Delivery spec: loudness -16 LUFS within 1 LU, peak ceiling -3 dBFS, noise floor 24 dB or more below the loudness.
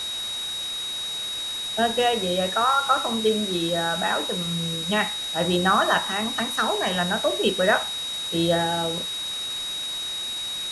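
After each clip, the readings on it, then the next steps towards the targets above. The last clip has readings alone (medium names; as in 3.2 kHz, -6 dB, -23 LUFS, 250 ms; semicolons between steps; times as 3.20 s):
steady tone 3.8 kHz; tone level -28 dBFS; noise floor -30 dBFS; noise floor target -48 dBFS; loudness -23.5 LUFS; peak level -6.5 dBFS; loudness target -16.0 LUFS
-> band-stop 3.8 kHz, Q 30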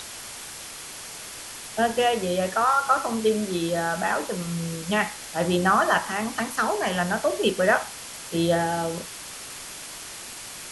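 steady tone not found; noise floor -39 dBFS; noise floor target -49 dBFS
-> noise print and reduce 10 dB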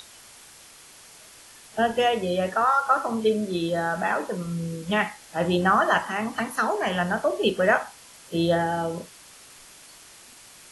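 noise floor -49 dBFS; loudness -24.5 LUFS; peak level -7.0 dBFS; loudness target -16.0 LUFS
-> trim +8.5 dB; peak limiter -3 dBFS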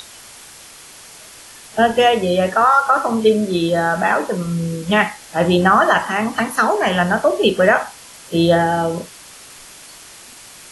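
loudness -16.5 LUFS; peak level -3.0 dBFS; noise floor -41 dBFS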